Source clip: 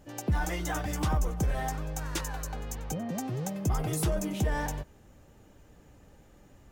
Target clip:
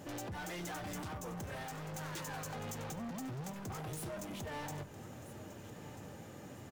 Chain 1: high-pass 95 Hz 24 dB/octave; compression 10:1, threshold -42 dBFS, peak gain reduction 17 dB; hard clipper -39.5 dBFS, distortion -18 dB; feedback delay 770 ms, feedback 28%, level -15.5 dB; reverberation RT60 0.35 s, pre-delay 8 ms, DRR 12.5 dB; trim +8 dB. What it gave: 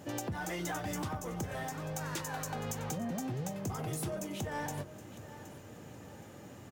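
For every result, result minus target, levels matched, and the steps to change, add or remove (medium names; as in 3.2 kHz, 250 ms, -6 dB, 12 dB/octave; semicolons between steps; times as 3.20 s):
echo 519 ms early; hard clipper: distortion -11 dB
change: feedback delay 1289 ms, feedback 28%, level -15.5 dB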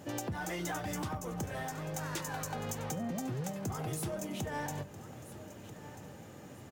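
hard clipper: distortion -11 dB
change: hard clipper -49 dBFS, distortion -7 dB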